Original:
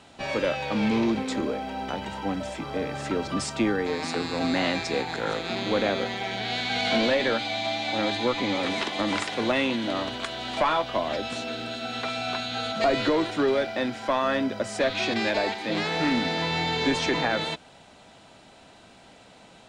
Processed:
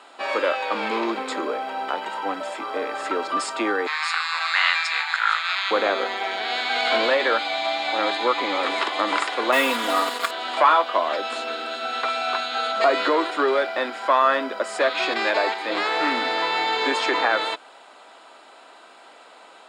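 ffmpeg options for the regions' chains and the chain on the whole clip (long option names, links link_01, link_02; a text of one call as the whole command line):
ffmpeg -i in.wav -filter_complex "[0:a]asettb=1/sr,asplit=3[link_01][link_02][link_03];[link_01]atrim=end=3.874[link_04];[link_02]atrim=start=3.87:end=5.71,asetpts=PTS-STARTPTS,afade=type=in:duration=0.004:curve=qsin,afade=type=out:start_time=1.836:duration=0.004:curve=qsin,highpass=frequency=1100:width=0.5412,highpass=frequency=1100:width=1.3066,equalizer=frequency=2200:width_type=o:width=2.4:gain=6.5[link_05];[link_03]atrim=start=5.706[link_06];[link_04][link_05]acrossfade=duration=0.004:curve1=hsin:curve2=qsin[link_07];[link_07][link_06]acrossfade=duration=0.004:curve1=qsin:curve2=hsin,asettb=1/sr,asplit=3[link_08][link_09][link_10];[link_08]atrim=end=9.524[link_11];[link_09]atrim=start=9.52:end=10.31,asetpts=PTS-STARTPTS,afade=type=in:duration=0.004:curve=qsin,afade=type=out:start_time=0.786:duration=0.004:curve=qsin,acrusher=bits=4:mix=0:aa=0.5,aecho=1:1:4.2:0.85,atrim=end_sample=34839[link_12];[link_10]atrim=start=10.306[link_13];[link_11][link_12]acrossfade=duration=0.004:curve1=hsin:curve2=qsin[link_14];[link_14][link_13]acrossfade=duration=0.004:curve1=qsin:curve2=hsin,highpass=frequency=330:width=0.5412,highpass=frequency=330:width=1.3066,equalizer=frequency=1200:width=1.6:gain=9,bandreject=frequency=5900:width=5.5,volume=2dB" out.wav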